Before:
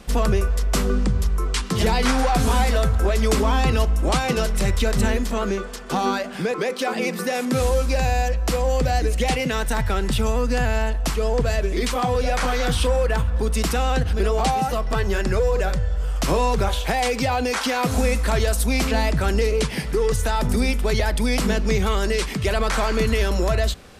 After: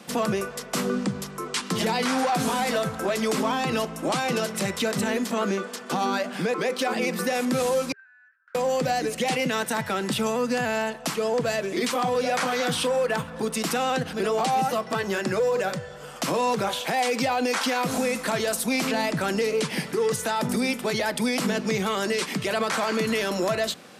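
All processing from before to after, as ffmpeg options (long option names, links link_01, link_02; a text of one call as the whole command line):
ffmpeg -i in.wav -filter_complex "[0:a]asettb=1/sr,asplit=3[link_01][link_02][link_03];[link_01]atrim=end=7.924[link_04];[link_02]atrim=start=7.92:end=8.55,asetpts=PTS-STARTPTS,afade=type=in:duration=0.004:curve=qsin,afade=type=out:start_time=0.626:duration=0.004:curve=qsin,asuperpass=centerf=1500:order=4:qfactor=6.1,aderivative[link_05];[link_03]atrim=start=8.546[link_06];[link_04][link_05]acrossfade=duration=0.004:curve1=hsin:curve2=qsin[link_07];[link_07][link_06]acrossfade=duration=0.004:curve1=qsin:curve2=hsin,highpass=frequency=160:width=0.5412,highpass=frequency=160:width=1.3066,bandreject=frequency=410:width=12,alimiter=limit=-16dB:level=0:latency=1:release=38" out.wav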